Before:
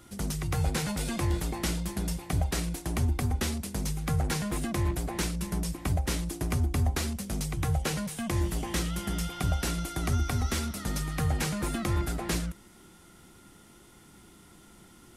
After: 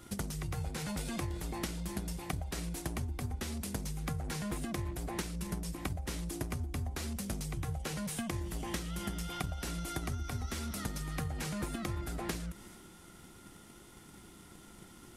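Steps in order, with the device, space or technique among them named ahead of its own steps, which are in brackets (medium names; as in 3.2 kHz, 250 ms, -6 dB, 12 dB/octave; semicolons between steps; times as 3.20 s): drum-bus smash (transient shaper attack +8 dB, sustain +4 dB; compression 6:1, threshold -33 dBFS, peak gain reduction 15 dB; saturation -20.5 dBFS, distortion -29 dB); trim -1 dB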